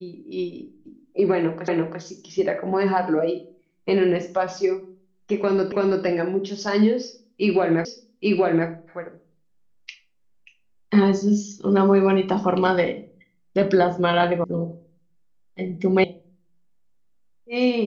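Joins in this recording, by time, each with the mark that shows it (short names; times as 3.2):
1.68 repeat of the last 0.34 s
5.72 repeat of the last 0.33 s
7.85 repeat of the last 0.83 s
14.44 sound cut off
16.04 sound cut off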